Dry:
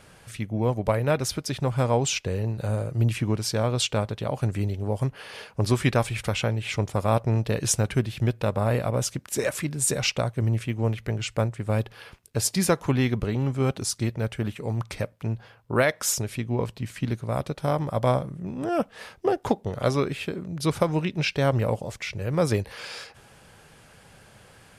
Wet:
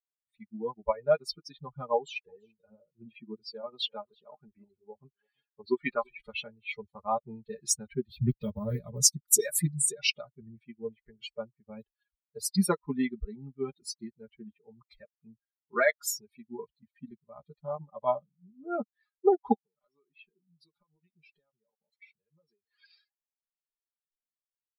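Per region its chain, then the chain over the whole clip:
1.95–6.2 LPF 3400 Hz 6 dB/oct + bell 96 Hz -5.5 dB 2 oct + echo 0.337 s -12 dB
8.09–9.82 tone controls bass +8 dB, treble +12 dB + Doppler distortion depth 0.28 ms
19.55–22.84 HPF 110 Hz + compressor 10:1, threshold -33 dBFS
whole clip: per-bin expansion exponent 3; bell 160 Hz -3 dB 0.95 oct; comb 4.9 ms, depth 98%

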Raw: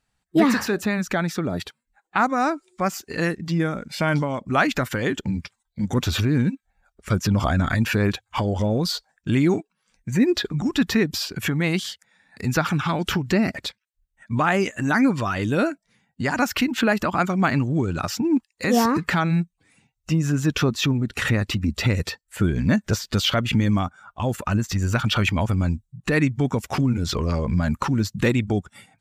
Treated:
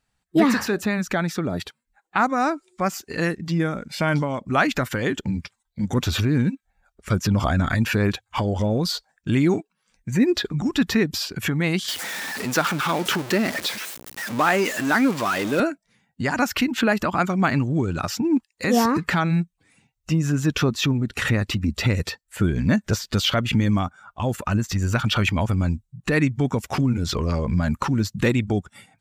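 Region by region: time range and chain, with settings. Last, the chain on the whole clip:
11.88–15.6 zero-crossing step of -24.5 dBFS + HPF 250 Hz
whole clip: dry

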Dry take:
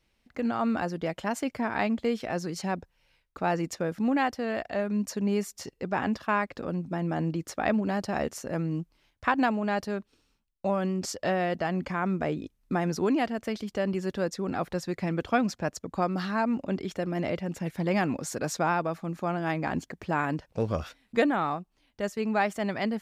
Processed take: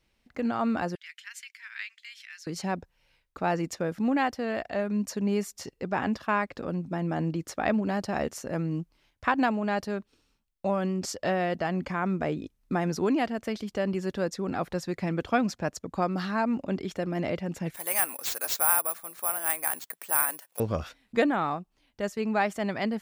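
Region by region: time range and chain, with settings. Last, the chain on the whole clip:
0.95–2.47 steep high-pass 1800 Hz + tilt -1.5 dB/oct
17.74–20.6 HPF 850 Hz + careless resampling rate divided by 4×, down none, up zero stuff
whole clip: dry

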